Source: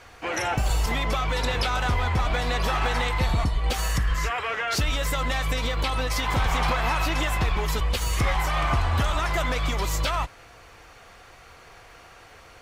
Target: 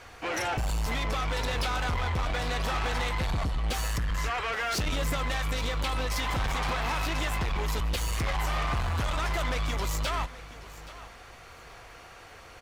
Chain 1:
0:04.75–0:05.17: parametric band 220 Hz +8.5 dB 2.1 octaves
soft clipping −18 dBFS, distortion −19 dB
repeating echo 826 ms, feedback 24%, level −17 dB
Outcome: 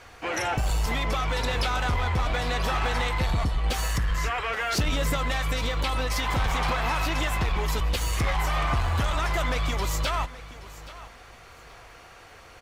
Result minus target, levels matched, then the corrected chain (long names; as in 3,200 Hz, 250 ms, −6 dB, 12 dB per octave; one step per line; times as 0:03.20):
soft clipping: distortion −8 dB
0:04.75–0:05.17: parametric band 220 Hz +8.5 dB 2.1 octaves
soft clipping −25.5 dBFS, distortion −11 dB
repeating echo 826 ms, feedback 24%, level −17 dB